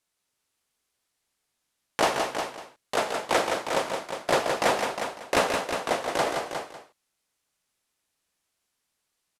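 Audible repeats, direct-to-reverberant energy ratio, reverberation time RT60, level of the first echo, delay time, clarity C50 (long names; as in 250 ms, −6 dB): 4, no reverb audible, no reverb audible, −16.5 dB, 134 ms, no reverb audible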